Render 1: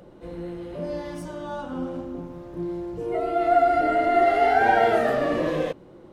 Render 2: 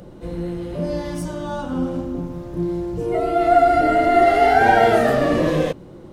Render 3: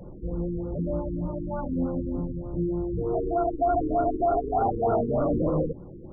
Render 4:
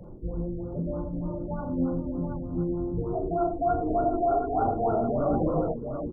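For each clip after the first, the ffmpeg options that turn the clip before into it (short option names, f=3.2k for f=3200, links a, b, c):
-af "bass=f=250:g=7,treble=f=4k:g=6,volume=4.5dB"
-af "lowshelf=f=91:g=8.5,asoftclip=type=tanh:threshold=-14dB,afftfilt=real='re*lt(b*sr/1024,460*pow(1500/460,0.5+0.5*sin(2*PI*3.3*pts/sr)))':imag='im*lt(b*sr/1024,460*pow(1500/460,0.5+0.5*sin(2*PI*3.3*pts/sr)))':win_size=1024:overlap=0.75,volume=-4dB"
-filter_complex "[0:a]acrossover=split=470[a][b];[a]aeval=exprs='val(0)*(1-0.5/2+0.5/2*cos(2*PI*7.7*n/s))':c=same[c];[b]aeval=exprs='val(0)*(1-0.5/2-0.5/2*cos(2*PI*7.7*n/s))':c=same[d];[c][d]amix=inputs=2:normalize=0,asplit=2[e][f];[f]aecho=0:1:42|89|728:0.398|0.178|0.473[g];[e][g]amix=inputs=2:normalize=0"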